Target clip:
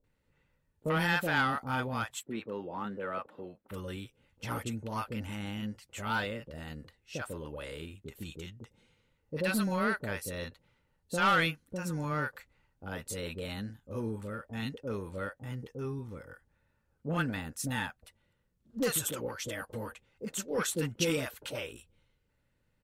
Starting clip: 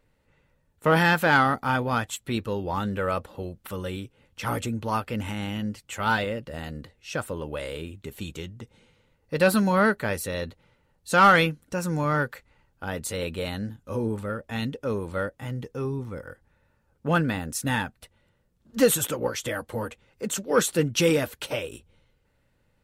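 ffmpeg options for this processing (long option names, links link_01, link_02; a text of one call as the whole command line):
ffmpeg -i in.wav -filter_complex "[0:a]asettb=1/sr,asplit=3[link_01][link_02][link_03];[link_01]atrim=end=2.194[link_04];[link_02]atrim=start=2.19:end=3.7,asetpts=PTS-STARTPTS,afade=type=in:duration=0.004:curve=qsin,afade=type=out:start_time=1.506:duration=0.004:curve=qsin,acrossover=split=170 2800:gain=0.1 1 0.178[link_05][link_06][link_07];[link_05][link_06][link_07]amix=inputs=3:normalize=0[link_08];[link_03]atrim=start=3.696[link_09];[link_04][link_08]acrossfade=duration=0.004:curve1=hsin:curve2=qsin[link_10];[link_10][link_09]acrossfade=duration=0.004:curve1=qsin:curve2=hsin,aeval=exprs='0.473*(cos(1*acos(clip(val(0)/0.473,-1,1)))-cos(1*PI/2))+0.0075*(cos(7*acos(clip(val(0)/0.473,-1,1)))-cos(7*PI/2))':channel_layout=same,acrossover=split=1800[link_11][link_12];[link_11]asoftclip=type=tanh:threshold=-17dB[link_13];[link_13][link_12]amix=inputs=2:normalize=0,acrossover=split=680[link_14][link_15];[link_15]adelay=40[link_16];[link_14][link_16]amix=inputs=2:normalize=0,volume=-6dB" out.wav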